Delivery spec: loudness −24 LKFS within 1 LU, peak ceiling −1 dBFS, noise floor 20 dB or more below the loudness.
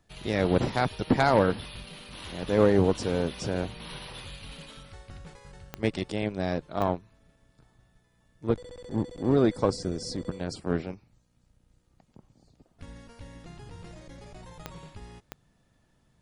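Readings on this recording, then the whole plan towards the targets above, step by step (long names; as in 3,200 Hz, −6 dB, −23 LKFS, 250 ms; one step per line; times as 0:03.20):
number of clicks 4; integrated loudness −28.0 LKFS; sample peak −8.5 dBFS; target loudness −24.0 LKFS
→ click removal
level +4 dB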